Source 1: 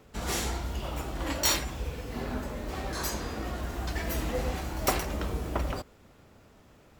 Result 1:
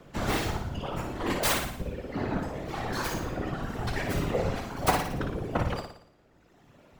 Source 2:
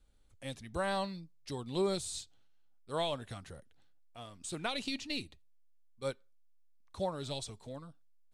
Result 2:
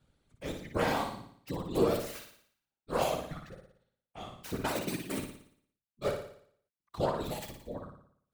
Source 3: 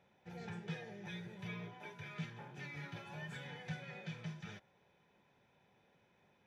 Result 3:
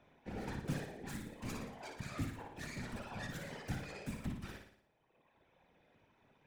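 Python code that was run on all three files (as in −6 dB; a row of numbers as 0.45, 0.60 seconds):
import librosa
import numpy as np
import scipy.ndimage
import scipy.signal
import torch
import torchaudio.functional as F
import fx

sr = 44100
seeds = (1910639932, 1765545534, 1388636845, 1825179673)

y = fx.tracing_dist(x, sr, depth_ms=0.42)
y = scipy.signal.sosfilt(scipy.signal.butter(2, 52.0, 'highpass', fs=sr, output='sos'), y)
y = fx.dereverb_blind(y, sr, rt60_s=1.8)
y = fx.high_shelf(y, sr, hz=4600.0, db=-8.5)
y = fx.whisperise(y, sr, seeds[0])
y = fx.room_flutter(y, sr, wall_m=9.9, rt60_s=0.61)
y = F.gain(torch.from_numpy(y), 5.0).numpy()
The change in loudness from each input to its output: +1.5, +3.5, +3.0 LU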